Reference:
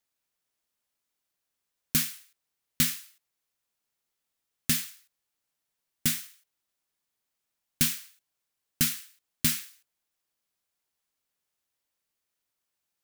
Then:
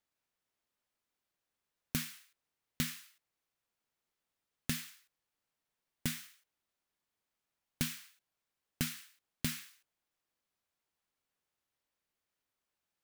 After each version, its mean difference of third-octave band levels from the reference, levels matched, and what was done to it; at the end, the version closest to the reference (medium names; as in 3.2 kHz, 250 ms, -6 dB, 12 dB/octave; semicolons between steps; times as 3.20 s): 3.0 dB: treble shelf 4 kHz -9 dB; compression 2:1, threshold -35 dBFS, peak gain reduction 7 dB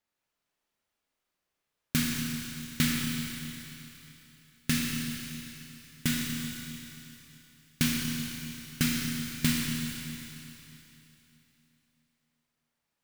15.5 dB: treble shelf 4.5 kHz -12 dB; Schroeder reverb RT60 3.2 s, combs from 26 ms, DRR -1.5 dB; trim +2 dB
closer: first